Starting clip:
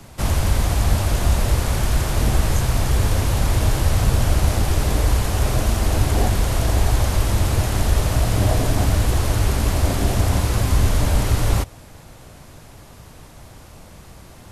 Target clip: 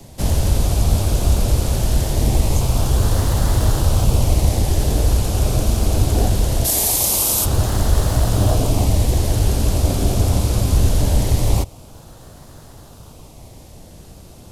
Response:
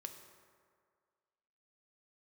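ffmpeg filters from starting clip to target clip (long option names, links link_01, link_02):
-filter_complex "[0:a]asplit=3[link_01][link_02][link_03];[link_01]afade=type=out:start_time=6.64:duration=0.02[link_04];[link_02]aemphasis=mode=production:type=riaa,afade=type=in:start_time=6.64:duration=0.02,afade=type=out:start_time=7.44:duration=0.02[link_05];[link_03]afade=type=in:start_time=7.44:duration=0.02[link_06];[link_04][link_05][link_06]amix=inputs=3:normalize=0,acrossover=split=130|1000|2600[link_07][link_08][link_09][link_10];[link_09]acrusher=samples=29:mix=1:aa=0.000001:lfo=1:lforange=29:lforate=0.22[link_11];[link_07][link_08][link_11][link_10]amix=inputs=4:normalize=0,volume=2dB"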